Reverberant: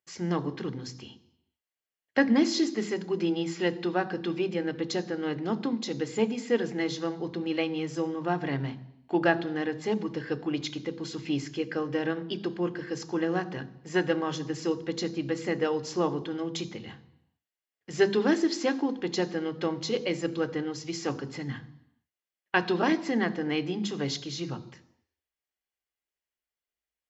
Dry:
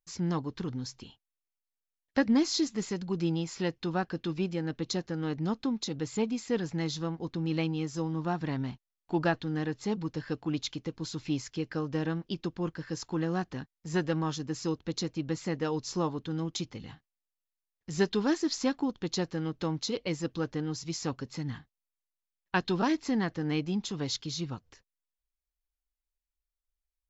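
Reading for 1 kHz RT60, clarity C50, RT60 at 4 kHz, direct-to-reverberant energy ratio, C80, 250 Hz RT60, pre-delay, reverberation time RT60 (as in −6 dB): 0.85 s, 17.0 dB, 0.85 s, 12.0 dB, 19.0 dB, 0.80 s, 3 ms, 0.85 s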